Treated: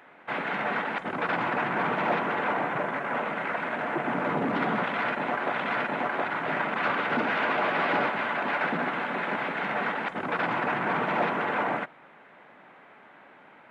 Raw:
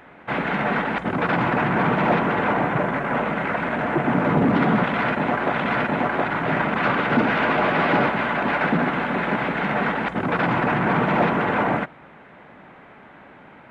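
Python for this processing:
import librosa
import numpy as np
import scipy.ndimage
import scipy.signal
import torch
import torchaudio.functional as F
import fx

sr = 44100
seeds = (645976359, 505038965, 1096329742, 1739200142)

y = fx.highpass(x, sr, hz=450.0, slope=6)
y = y * librosa.db_to_amplitude(-4.5)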